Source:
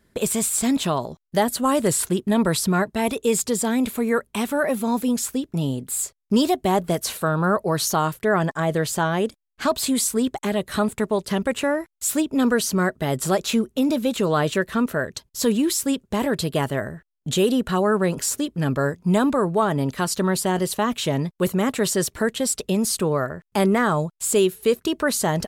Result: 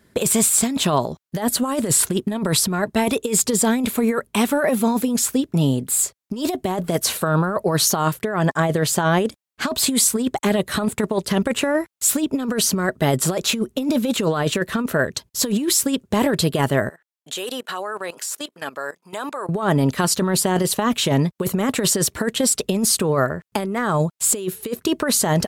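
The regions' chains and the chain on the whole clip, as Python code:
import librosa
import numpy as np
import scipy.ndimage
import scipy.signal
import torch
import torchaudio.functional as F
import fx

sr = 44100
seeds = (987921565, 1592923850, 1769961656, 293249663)

y = fx.chain(x, sr, fx.highpass(hz=670.0, slope=12),
    fx.level_steps(step_db=17), at=(16.89, 19.49))
y = scipy.signal.sosfilt(scipy.signal.butter(2, 63.0, 'highpass', fs=sr, output='sos'), y)
y = fx.over_compress(y, sr, threshold_db=-22.0, ratio=-0.5)
y = F.gain(torch.from_numpy(y), 4.0).numpy()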